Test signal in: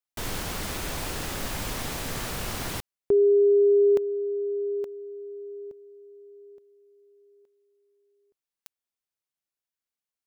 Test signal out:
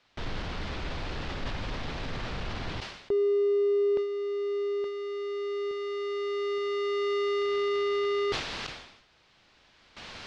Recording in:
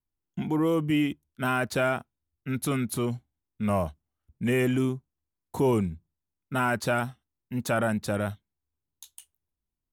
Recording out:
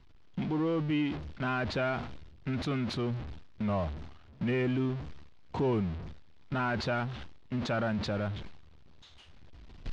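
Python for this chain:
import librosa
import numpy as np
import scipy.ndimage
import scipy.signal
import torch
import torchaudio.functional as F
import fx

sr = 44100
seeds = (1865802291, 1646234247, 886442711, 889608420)

y = x + 0.5 * 10.0 ** (-30.5 / 20.0) * np.sign(x)
y = fx.recorder_agc(y, sr, target_db=-20.0, rise_db_per_s=5.4, max_gain_db=30)
y = scipy.signal.sosfilt(scipy.signal.butter(4, 4400.0, 'lowpass', fs=sr, output='sos'), y)
y = fx.gate_hold(y, sr, open_db=-27.0, close_db=-29.0, hold_ms=149.0, range_db=-15, attack_ms=0.49, release_ms=80.0)
y = fx.low_shelf(y, sr, hz=110.0, db=5.0)
y = fx.sustainer(y, sr, db_per_s=68.0)
y = y * 10.0 ** (-7.5 / 20.0)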